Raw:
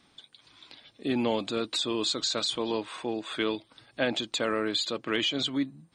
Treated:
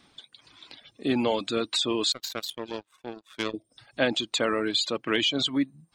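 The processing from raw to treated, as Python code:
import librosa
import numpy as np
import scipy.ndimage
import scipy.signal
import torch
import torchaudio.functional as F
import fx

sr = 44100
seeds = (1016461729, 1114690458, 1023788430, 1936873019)

y = fx.spec_box(x, sr, start_s=3.51, length_s=0.27, low_hz=750.0, high_hz=5000.0, gain_db=-16)
y = fx.power_curve(y, sr, exponent=2.0, at=(2.12, 3.54))
y = fx.dereverb_blind(y, sr, rt60_s=0.59)
y = y * librosa.db_to_amplitude(3.5)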